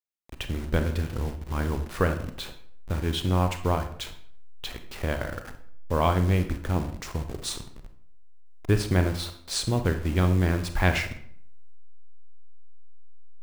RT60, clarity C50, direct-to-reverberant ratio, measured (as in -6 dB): 0.60 s, 10.0 dB, 7.5 dB